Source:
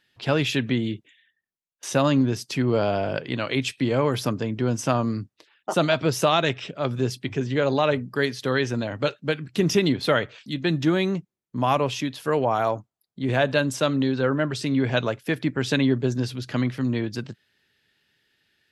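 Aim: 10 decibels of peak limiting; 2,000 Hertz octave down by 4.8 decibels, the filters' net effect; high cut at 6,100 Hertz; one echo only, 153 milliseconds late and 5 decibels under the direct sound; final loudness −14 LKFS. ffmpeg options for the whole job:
ffmpeg -i in.wav -af "lowpass=6100,equalizer=frequency=2000:width_type=o:gain=-6.5,alimiter=limit=-18dB:level=0:latency=1,aecho=1:1:153:0.562,volume=13.5dB" out.wav

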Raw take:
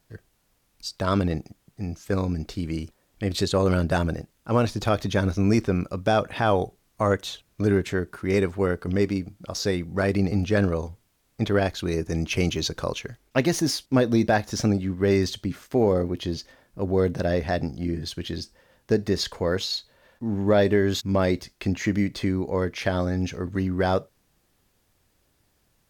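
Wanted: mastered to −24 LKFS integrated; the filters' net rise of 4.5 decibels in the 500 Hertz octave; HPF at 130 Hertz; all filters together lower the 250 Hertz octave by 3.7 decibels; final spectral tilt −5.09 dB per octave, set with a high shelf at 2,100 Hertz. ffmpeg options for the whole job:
ffmpeg -i in.wav -af "highpass=130,equalizer=frequency=250:width_type=o:gain=-7.5,equalizer=frequency=500:width_type=o:gain=8,highshelf=frequency=2100:gain=-4.5" out.wav

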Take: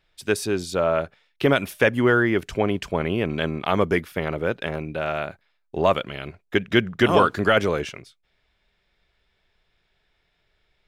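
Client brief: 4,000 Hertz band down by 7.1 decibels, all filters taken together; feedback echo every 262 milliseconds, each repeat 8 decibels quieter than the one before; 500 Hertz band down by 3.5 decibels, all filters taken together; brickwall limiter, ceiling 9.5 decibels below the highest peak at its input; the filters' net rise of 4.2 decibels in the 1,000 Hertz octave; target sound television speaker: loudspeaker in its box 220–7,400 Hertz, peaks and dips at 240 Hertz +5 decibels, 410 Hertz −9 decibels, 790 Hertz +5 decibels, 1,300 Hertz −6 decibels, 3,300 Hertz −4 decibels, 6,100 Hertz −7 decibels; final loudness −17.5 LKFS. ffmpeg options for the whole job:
ffmpeg -i in.wav -af "equalizer=frequency=500:width_type=o:gain=-4,equalizer=frequency=1000:width_type=o:gain=7.5,equalizer=frequency=4000:width_type=o:gain=-6.5,alimiter=limit=-11.5dB:level=0:latency=1,highpass=frequency=220:width=0.5412,highpass=frequency=220:width=1.3066,equalizer=frequency=240:width_type=q:width=4:gain=5,equalizer=frequency=410:width_type=q:width=4:gain=-9,equalizer=frequency=790:width_type=q:width=4:gain=5,equalizer=frequency=1300:width_type=q:width=4:gain=-6,equalizer=frequency=3300:width_type=q:width=4:gain=-4,equalizer=frequency=6100:width_type=q:width=4:gain=-7,lowpass=frequency=7400:width=0.5412,lowpass=frequency=7400:width=1.3066,aecho=1:1:262|524|786|1048|1310:0.398|0.159|0.0637|0.0255|0.0102,volume=9.5dB" out.wav

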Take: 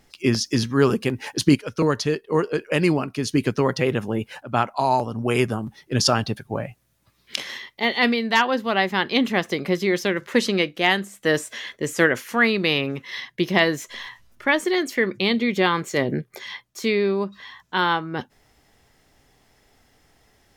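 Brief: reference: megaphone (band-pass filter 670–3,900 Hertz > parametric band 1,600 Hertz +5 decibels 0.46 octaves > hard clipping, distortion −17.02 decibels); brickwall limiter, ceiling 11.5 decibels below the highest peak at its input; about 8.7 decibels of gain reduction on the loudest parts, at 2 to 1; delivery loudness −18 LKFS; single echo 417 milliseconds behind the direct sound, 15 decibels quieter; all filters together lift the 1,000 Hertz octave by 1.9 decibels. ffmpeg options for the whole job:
ffmpeg -i in.wav -af "equalizer=frequency=1000:width_type=o:gain=3,acompressor=threshold=-27dB:ratio=2,alimiter=limit=-19dB:level=0:latency=1,highpass=670,lowpass=3900,equalizer=frequency=1600:width_type=o:width=0.46:gain=5,aecho=1:1:417:0.178,asoftclip=type=hard:threshold=-23dB,volume=16dB" out.wav

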